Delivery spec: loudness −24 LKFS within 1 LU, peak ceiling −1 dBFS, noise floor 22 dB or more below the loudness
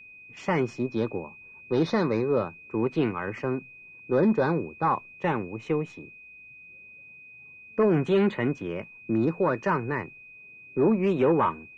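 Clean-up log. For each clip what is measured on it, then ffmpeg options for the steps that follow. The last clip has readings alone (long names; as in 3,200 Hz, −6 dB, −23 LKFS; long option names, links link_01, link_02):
interfering tone 2,500 Hz; level of the tone −46 dBFS; integrated loudness −26.5 LKFS; sample peak −12.5 dBFS; target loudness −24.0 LKFS
→ -af "bandreject=frequency=2500:width=30"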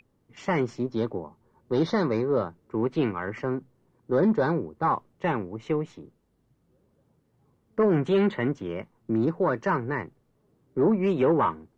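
interfering tone none found; integrated loudness −27.0 LKFS; sample peak −12.5 dBFS; target loudness −24.0 LKFS
→ -af "volume=3dB"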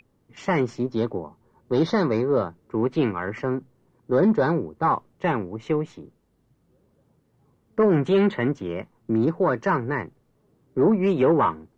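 integrated loudness −24.0 LKFS; sample peak −9.5 dBFS; background noise floor −66 dBFS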